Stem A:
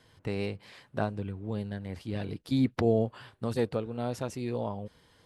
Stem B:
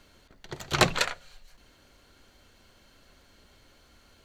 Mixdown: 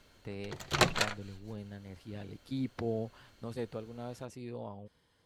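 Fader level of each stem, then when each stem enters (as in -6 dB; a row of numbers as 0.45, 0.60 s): -9.5, -4.5 dB; 0.00, 0.00 s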